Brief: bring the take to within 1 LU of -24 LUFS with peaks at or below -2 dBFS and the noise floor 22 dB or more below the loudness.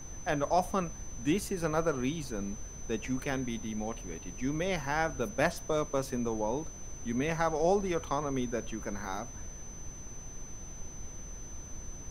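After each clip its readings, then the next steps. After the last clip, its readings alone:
steady tone 6.1 kHz; tone level -47 dBFS; noise floor -46 dBFS; noise floor target -55 dBFS; loudness -33.0 LUFS; peak level -12.0 dBFS; loudness target -24.0 LUFS
-> band-stop 6.1 kHz, Q 30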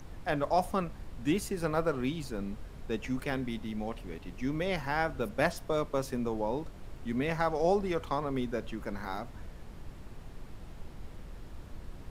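steady tone not found; noise floor -48 dBFS; noise floor target -56 dBFS
-> noise print and reduce 8 dB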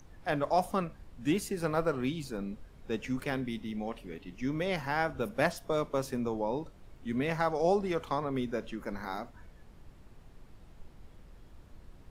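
noise floor -55 dBFS; noise floor target -56 dBFS
-> noise print and reduce 6 dB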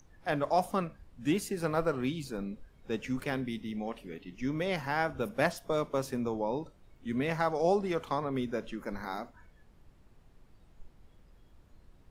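noise floor -61 dBFS; loudness -33.5 LUFS; peak level -12.0 dBFS; loudness target -24.0 LUFS
-> trim +9.5 dB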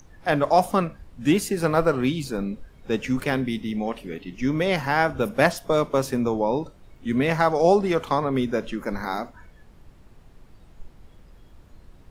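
loudness -24.0 LUFS; peak level -2.5 dBFS; noise floor -51 dBFS

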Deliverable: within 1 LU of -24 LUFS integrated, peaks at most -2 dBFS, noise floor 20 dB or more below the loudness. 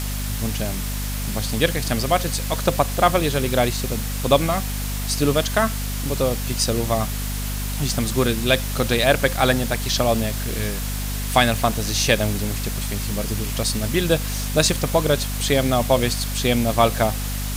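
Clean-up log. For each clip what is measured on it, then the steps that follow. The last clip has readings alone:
hum 50 Hz; highest harmonic 250 Hz; hum level -24 dBFS; noise floor -26 dBFS; noise floor target -42 dBFS; loudness -21.5 LUFS; peak level -2.5 dBFS; loudness target -24.0 LUFS
-> hum notches 50/100/150/200/250 Hz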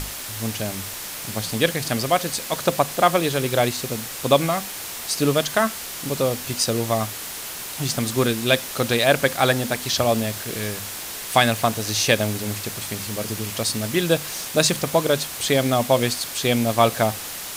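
hum not found; noise floor -33 dBFS; noise floor target -42 dBFS
-> noise print and reduce 9 dB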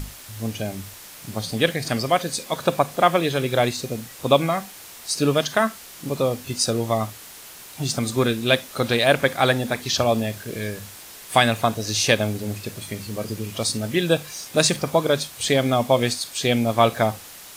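noise floor -42 dBFS; noise floor target -43 dBFS
-> noise print and reduce 6 dB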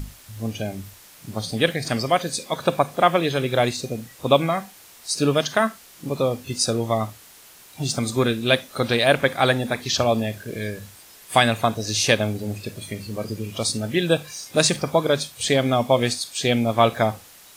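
noise floor -48 dBFS; loudness -22.5 LUFS; peak level -3.0 dBFS; loudness target -24.0 LUFS
-> trim -1.5 dB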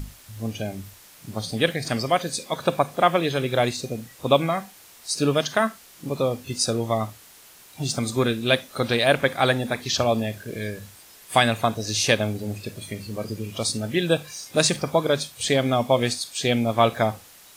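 loudness -24.0 LUFS; peak level -4.5 dBFS; noise floor -49 dBFS

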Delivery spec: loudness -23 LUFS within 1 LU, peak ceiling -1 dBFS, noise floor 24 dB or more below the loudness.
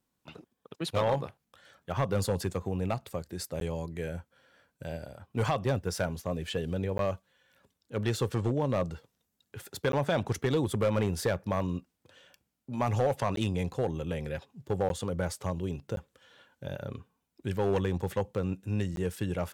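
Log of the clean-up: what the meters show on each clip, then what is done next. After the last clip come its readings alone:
clipped samples 0.6%; clipping level -20.5 dBFS; dropouts 7; longest dropout 12 ms; loudness -32.0 LUFS; peak level -20.5 dBFS; loudness target -23.0 LUFS
-> clip repair -20.5 dBFS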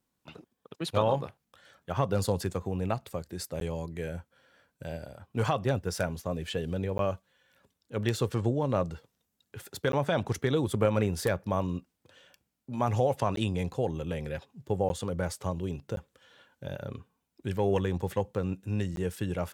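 clipped samples 0.0%; dropouts 7; longest dropout 12 ms
-> interpolate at 3.60/6.98/9.92/13.36/14.89/15.96/18.96 s, 12 ms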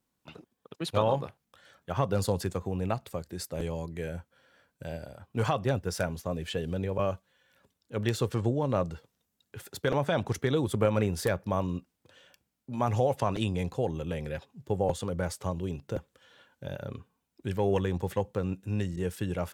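dropouts 0; loudness -31.5 LUFS; peak level -11.5 dBFS; loudness target -23.0 LUFS
-> trim +8.5 dB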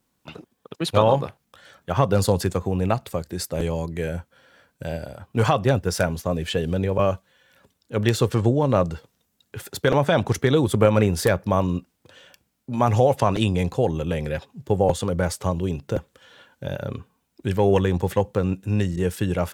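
loudness -23.0 LUFS; peak level -3.0 dBFS; noise floor -73 dBFS

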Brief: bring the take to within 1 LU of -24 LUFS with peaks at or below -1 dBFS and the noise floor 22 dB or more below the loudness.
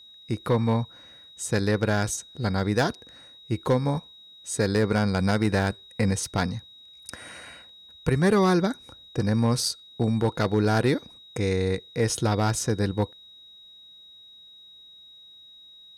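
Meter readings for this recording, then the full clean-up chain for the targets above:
clipped samples 0.2%; clipping level -13.5 dBFS; steady tone 3.8 kHz; tone level -47 dBFS; loudness -25.5 LUFS; peak level -13.5 dBFS; loudness target -24.0 LUFS
-> clip repair -13.5 dBFS; band-stop 3.8 kHz, Q 30; trim +1.5 dB

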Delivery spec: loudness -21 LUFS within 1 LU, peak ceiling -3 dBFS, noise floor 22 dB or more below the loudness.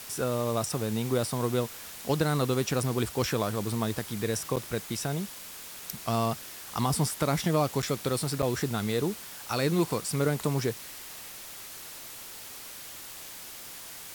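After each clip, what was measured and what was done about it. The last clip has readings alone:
dropouts 3; longest dropout 7.7 ms; noise floor -44 dBFS; noise floor target -53 dBFS; loudness -30.5 LUFS; peak level -14.0 dBFS; loudness target -21.0 LUFS
-> interpolate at 4.56/7.82/8.42 s, 7.7 ms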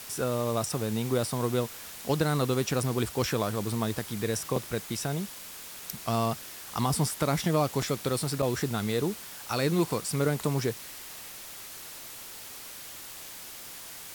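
dropouts 0; noise floor -44 dBFS; noise floor target -53 dBFS
-> noise reduction 9 dB, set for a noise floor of -44 dBFS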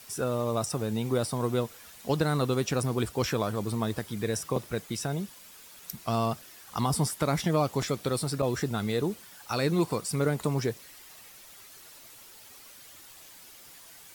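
noise floor -51 dBFS; noise floor target -52 dBFS
-> noise reduction 6 dB, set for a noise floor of -51 dBFS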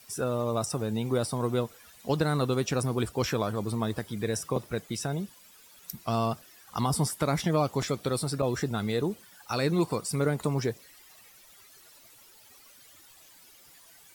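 noise floor -55 dBFS; loudness -30.0 LUFS; peak level -14.0 dBFS; loudness target -21.0 LUFS
-> trim +9 dB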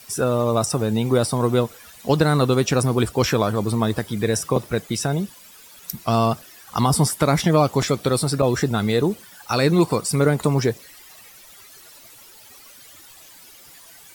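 loudness -21.0 LUFS; peak level -5.0 dBFS; noise floor -46 dBFS

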